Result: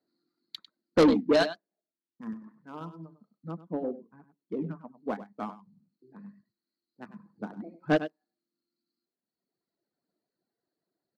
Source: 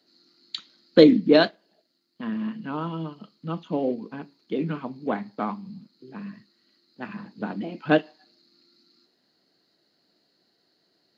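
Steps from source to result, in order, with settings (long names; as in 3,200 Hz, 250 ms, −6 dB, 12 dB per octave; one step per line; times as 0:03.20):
adaptive Wiener filter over 15 samples
reverb reduction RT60 1.7 s
0:02.33–0:02.81: low-shelf EQ 340 Hz −5.5 dB
0:03.51–0:04.94: low-pass filter 1,300 Hz 6 dB per octave
single-tap delay 99 ms −11 dB
soft clipping −15 dBFS, distortion −9 dB
expander for the loud parts 1.5 to 1, over −39 dBFS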